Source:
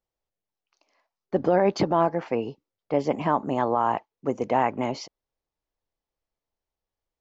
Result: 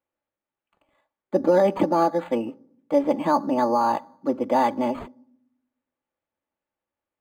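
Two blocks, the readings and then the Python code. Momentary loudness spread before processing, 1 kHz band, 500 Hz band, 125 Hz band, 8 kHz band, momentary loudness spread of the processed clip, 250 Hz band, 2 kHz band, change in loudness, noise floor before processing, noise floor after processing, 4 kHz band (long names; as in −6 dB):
9 LU, +2.0 dB, +2.5 dB, −4.0 dB, can't be measured, 9 LU, +3.5 dB, −0.5 dB, +2.5 dB, below −85 dBFS, below −85 dBFS, −1.5 dB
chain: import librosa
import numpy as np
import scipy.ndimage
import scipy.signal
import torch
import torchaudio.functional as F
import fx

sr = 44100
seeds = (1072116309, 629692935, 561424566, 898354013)

y = scipy.signal.sosfilt(scipy.signal.butter(4, 96.0, 'highpass', fs=sr, output='sos'), x)
y = y + 0.88 * np.pad(y, (int(3.5 * sr / 1000.0), 0))[:len(y)]
y = fx.rev_fdn(y, sr, rt60_s=0.69, lf_ratio=1.6, hf_ratio=0.3, size_ms=35.0, drr_db=19.0)
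y = np.interp(np.arange(len(y)), np.arange(len(y))[::8], y[::8])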